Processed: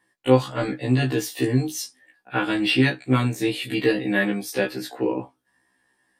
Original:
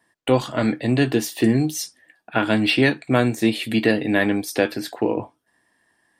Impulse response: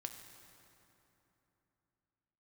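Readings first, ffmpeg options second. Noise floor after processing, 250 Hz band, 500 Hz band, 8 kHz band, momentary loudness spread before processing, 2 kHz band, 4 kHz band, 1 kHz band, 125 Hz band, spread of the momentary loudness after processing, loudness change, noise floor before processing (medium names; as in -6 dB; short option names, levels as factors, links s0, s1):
-70 dBFS, -3.0 dB, -2.0 dB, -2.5 dB, 7 LU, -2.0 dB, -2.0 dB, -2.0 dB, +0.5 dB, 8 LU, -2.0 dB, -69 dBFS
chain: -af "bandreject=f=650:w=12,afftfilt=real='re*1.73*eq(mod(b,3),0)':imag='im*1.73*eq(mod(b,3),0)':win_size=2048:overlap=0.75"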